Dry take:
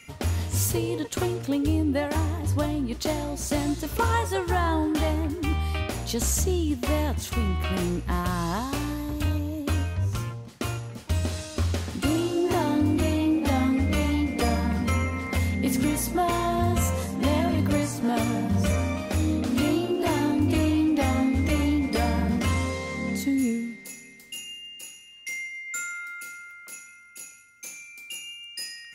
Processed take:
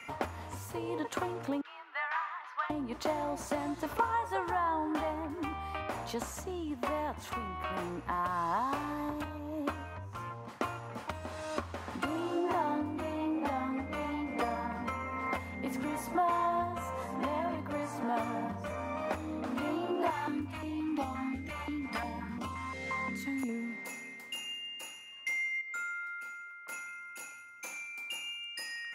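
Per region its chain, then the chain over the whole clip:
0:01.61–0:02.70: Chebyshev high-pass filter 1,300 Hz, order 3 + frequency shifter +29 Hz + high-frequency loss of the air 280 metres
0:20.10–0:23.49: parametric band 570 Hz −8.5 dB 1.1 octaves + notch on a step sequencer 5.7 Hz 280–1,800 Hz
0:25.61–0:26.69: high-shelf EQ 6,800 Hz −6 dB + tuned comb filter 220 Hz, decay 0.18 s, mix 70%
whole clip: graphic EQ with 15 bands 100 Hz +7 dB, 400 Hz −6 dB, 1,000 Hz +6 dB; downward compressor, threshold −33 dBFS; three-way crossover with the lows and the highs turned down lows −19 dB, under 280 Hz, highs −14 dB, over 2,200 Hz; level +6.5 dB

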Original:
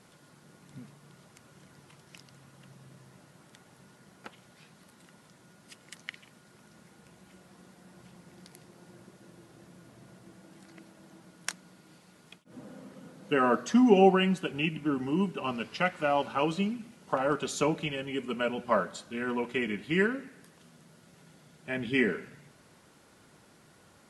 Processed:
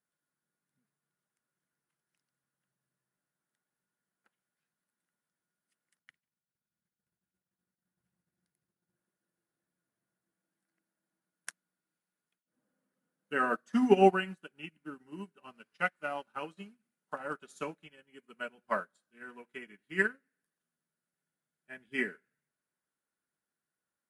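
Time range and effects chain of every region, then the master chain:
0:05.99–0:08.96: parametric band 92 Hz +14.5 dB 1.7 octaves + downward expander −46 dBFS
whole clip: graphic EQ with 15 bands 100 Hz −9 dB, 1,600 Hz +9 dB, 10,000 Hz +11 dB; expander for the loud parts 2.5 to 1, over −40 dBFS

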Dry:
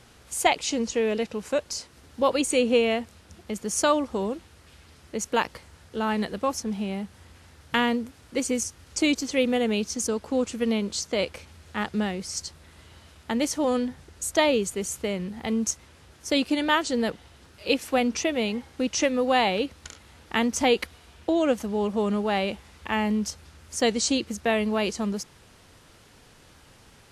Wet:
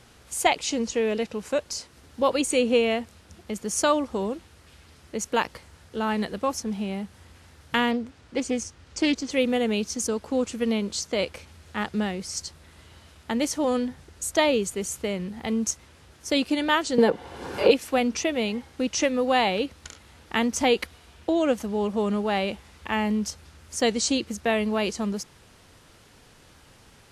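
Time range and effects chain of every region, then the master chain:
0:07.91–0:09.30: high-frequency loss of the air 64 metres + highs frequency-modulated by the lows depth 0.13 ms
0:16.98–0:17.71: parametric band 620 Hz +14 dB 2.5 octaves + notch comb filter 640 Hz + multiband upward and downward compressor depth 100%
whole clip: no processing

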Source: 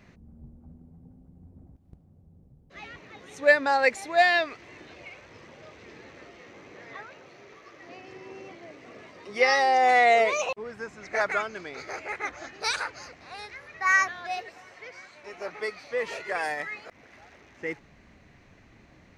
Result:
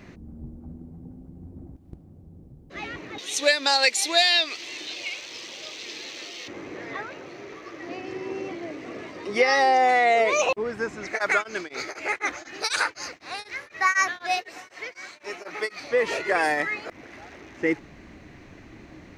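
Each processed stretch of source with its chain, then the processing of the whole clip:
0:03.18–0:06.48: high-pass filter 810 Hz 6 dB per octave + high shelf with overshoot 2,400 Hz +12.5 dB, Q 1.5
0:11.07–0:15.80: spectral tilt +2 dB per octave + tremolo along a rectified sine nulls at 4 Hz
whole clip: parametric band 320 Hz +8 dB 0.51 octaves; downward compressor 6 to 1, threshold −24 dBFS; level +7.5 dB

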